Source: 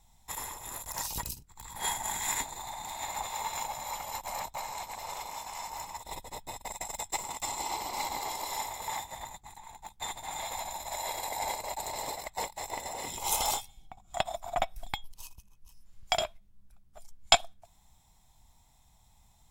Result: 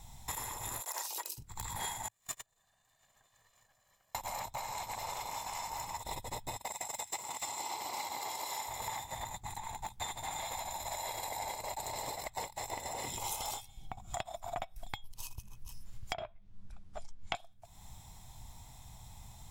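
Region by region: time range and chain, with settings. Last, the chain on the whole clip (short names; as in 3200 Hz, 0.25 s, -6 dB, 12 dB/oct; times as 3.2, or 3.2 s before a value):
0.81–1.38 steep high-pass 330 Hz 72 dB/oct + companded quantiser 8-bit
2.08–4.15 minimum comb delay 1.7 ms + gate -31 dBFS, range -41 dB + bell 74 Hz -8.5 dB 1.6 oct
6.57–8.68 HPF 320 Hz 6 dB/oct + thin delay 0.131 s, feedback 83%, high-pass 2300 Hz, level -17 dB
16.13–17.35 notches 60/120/180 Hz + treble ducked by the level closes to 2100 Hz, closed at -32 dBFS + air absorption 57 m
whole clip: bell 110 Hz +7.5 dB 0.73 oct; compressor 6:1, threshold -48 dBFS; gain +10 dB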